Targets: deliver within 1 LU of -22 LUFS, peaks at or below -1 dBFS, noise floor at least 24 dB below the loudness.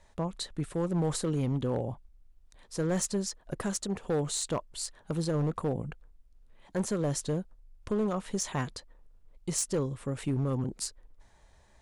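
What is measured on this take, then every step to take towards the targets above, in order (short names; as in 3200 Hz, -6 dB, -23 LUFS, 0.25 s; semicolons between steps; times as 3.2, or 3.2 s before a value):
clipped 1.8%; flat tops at -23.5 dBFS; loudness -32.5 LUFS; peak -23.5 dBFS; loudness target -22.0 LUFS
-> clip repair -23.5 dBFS; gain +10.5 dB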